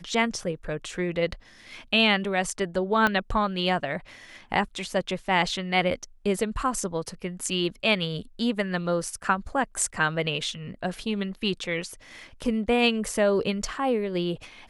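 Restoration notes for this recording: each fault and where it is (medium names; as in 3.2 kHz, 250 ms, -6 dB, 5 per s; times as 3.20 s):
3.07 s: pop -10 dBFS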